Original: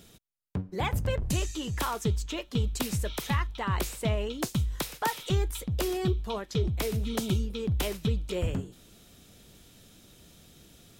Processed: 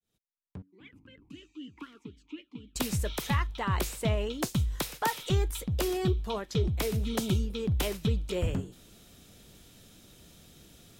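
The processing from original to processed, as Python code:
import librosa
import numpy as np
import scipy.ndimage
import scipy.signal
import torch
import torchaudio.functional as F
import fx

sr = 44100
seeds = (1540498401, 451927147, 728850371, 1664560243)

y = fx.fade_in_head(x, sr, length_s=2.1)
y = fx.vowel_sweep(y, sr, vowels='i-u', hz=3.9, at=(0.62, 2.76))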